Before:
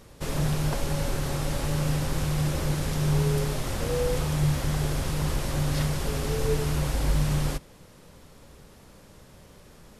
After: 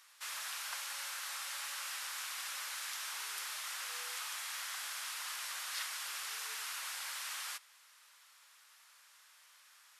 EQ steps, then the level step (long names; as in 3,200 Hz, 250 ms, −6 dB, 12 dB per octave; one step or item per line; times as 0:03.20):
high-pass filter 1,200 Hz 24 dB per octave
−3.5 dB